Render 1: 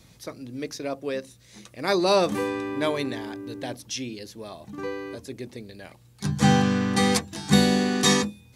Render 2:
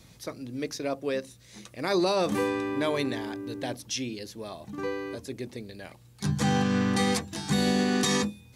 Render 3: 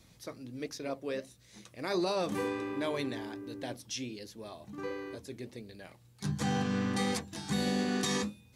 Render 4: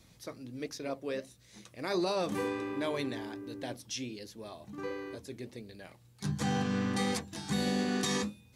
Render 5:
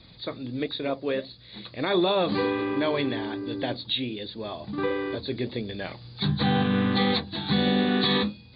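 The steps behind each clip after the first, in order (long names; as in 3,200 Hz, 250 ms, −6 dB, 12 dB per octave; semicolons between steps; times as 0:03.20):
brickwall limiter −16 dBFS, peak gain reduction 10.5 dB
flanger 1.4 Hz, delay 2.5 ms, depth 8.2 ms, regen −75%; level −2 dB
no processing that can be heard
hearing-aid frequency compression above 3,300 Hz 4 to 1; camcorder AGC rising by 5.3 dB per second; level +8 dB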